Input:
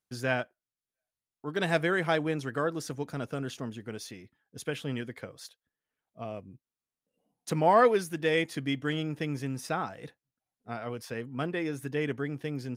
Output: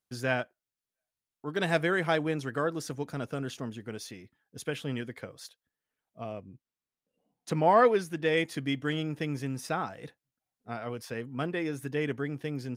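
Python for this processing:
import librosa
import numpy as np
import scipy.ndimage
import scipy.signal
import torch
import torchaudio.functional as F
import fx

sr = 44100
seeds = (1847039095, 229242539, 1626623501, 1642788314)

y = fx.high_shelf(x, sr, hz=7500.0, db=-9.0, at=(6.33, 8.37))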